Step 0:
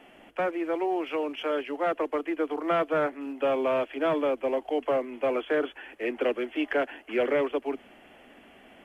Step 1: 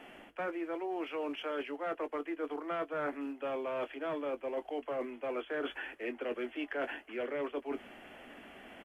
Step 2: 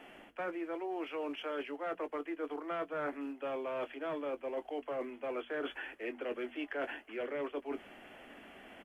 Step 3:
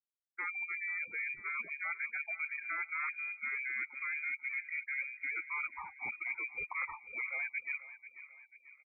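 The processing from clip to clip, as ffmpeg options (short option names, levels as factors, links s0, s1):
-filter_complex "[0:a]asplit=2[s0][s1];[s1]adelay=21,volume=0.224[s2];[s0][s2]amix=inputs=2:normalize=0,areverse,acompressor=threshold=0.0178:ratio=6,areverse,equalizer=f=1500:w=1.5:g=3"
-af "bandreject=f=60:t=h:w=6,bandreject=f=120:t=h:w=6,bandreject=f=180:t=h:w=6,bandreject=f=240:t=h:w=6,volume=0.841"
-filter_complex "[0:a]afftfilt=real='re*gte(hypot(re,im),0.0178)':imag='im*gte(hypot(re,im),0.0178)':win_size=1024:overlap=0.75,asplit=2[s0][s1];[s1]adelay=490,lowpass=f=2000:p=1,volume=0.2,asplit=2[s2][s3];[s3]adelay=490,lowpass=f=2000:p=1,volume=0.52,asplit=2[s4][s5];[s5]adelay=490,lowpass=f=2000:p=1,volume=0.52,asplit=2[s6][s7];[s7]adelay=490,lowpass=f=2000:p=1,volume=0.52,asplit=2[s8][s9];[s9]adelay=490,lowpass=f=2000:p=1,volume=0.52[s10];[s0][s2][s4][s6][s8][s10]amix=inputs=6:normalize=0,lowpass=f=2300:t=q:w=0.5098,lowpass=f=2300:t=q:w=0.6013,lowpass=f=2300:t=q:w=0.9,lowpass=f=2300:t=q:w=2.563,afreqshift=-2700"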